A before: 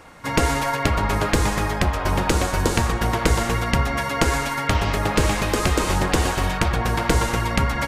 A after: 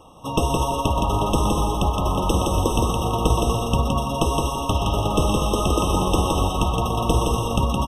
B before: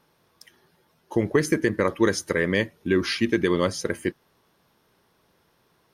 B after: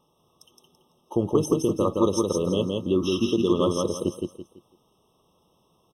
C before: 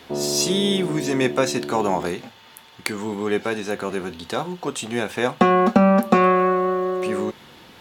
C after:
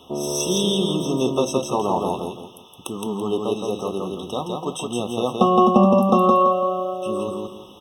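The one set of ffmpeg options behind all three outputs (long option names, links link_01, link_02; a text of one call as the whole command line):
ffmpeg -i in.wav -af "aecho=1:1:167|334|501|668:0.708|0.219|0.068|0.0211,afftfilt=real='re*eq(mod(floor(b*sr/1024/1300),2),0)':imag='im*eq(mod(floor(b*sr/1024/1300),2),0)':win_size=1024:overlap=0.75,volume=-1dB" out.wav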